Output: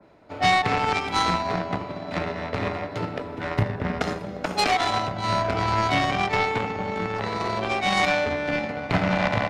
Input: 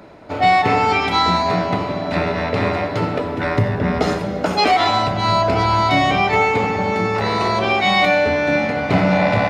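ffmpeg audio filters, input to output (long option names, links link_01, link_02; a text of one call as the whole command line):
ffmpeg -i in.wav -filter_complex "[0:a]aeval=exprs='0.562*(cos(1*acos(clip(val(0)/0.562,-1,1)))-cos(1*PI/2))+0.141*(cos(3*acos(clip(val(0)/0.562,-1,1)))-cos(3*PI/2))':channel_layout=same,acrossover=split=190|790[link_01][link_02][link_03];[link_02]alimiter=limit=-21dB:level=0:latency=1[link_04];[link_01][link_04][link_03]amix=inputs=3:normalize=0,adynamicequalizer=threshold=0.0141:dfrequency=2400:dqfactor=0.7:tfrequency=2400:tqfactor=0.7:attack=5:release=100:ratio=0.375:range=1.5:mode=cutabove:tftype=highshelf" out.wav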